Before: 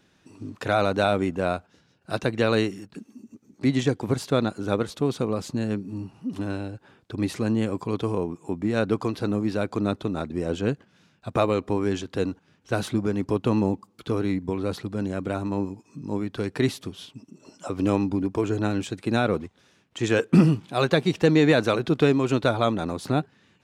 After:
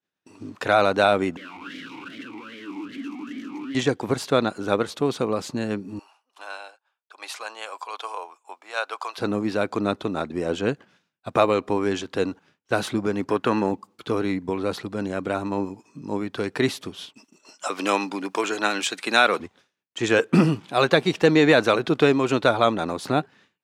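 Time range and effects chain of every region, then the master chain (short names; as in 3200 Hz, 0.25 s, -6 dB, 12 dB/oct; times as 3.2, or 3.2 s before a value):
1.37–3.75 infinite clipping + vowel sweep i-u 2.5 Hz
5.99–9.18 HPF 720 Hz 24 dB/oct + bell 1900 Hz -6.5 dB 0.27 oct
13.28–13.72 HPF 150 Hz 6 dB/oct + bell 1600 Hz +11.5 dB 0.59 oct
17.14–19.4 HPF 160 Hz 24 dB/oct + tilt shelf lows -9 dB, about 630 Hz
whole clip: LPF 1000 Hz 6 dB/oct; expander -48 dBFS; tilt +4 dB/oct; gain +8 dB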